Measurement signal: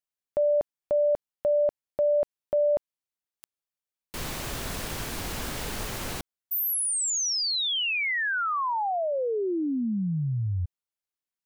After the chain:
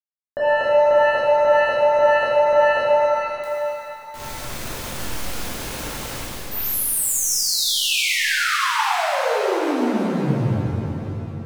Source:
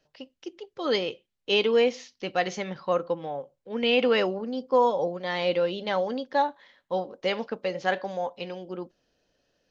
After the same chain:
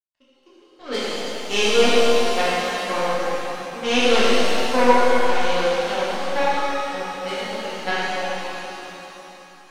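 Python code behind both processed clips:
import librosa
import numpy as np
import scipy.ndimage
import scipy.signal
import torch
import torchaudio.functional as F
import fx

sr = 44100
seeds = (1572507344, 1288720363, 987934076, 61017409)

y = fx.power_curve(x, sr, exponent=2.0)
y = fx.rev_shimmer(y, sr, seeds[0], rt60_s=3.2, semitones=7, shimmer_db=-8, drr_db=-10.5)
y = F.gain(torch.from_numpy(y), 1.5).numpy()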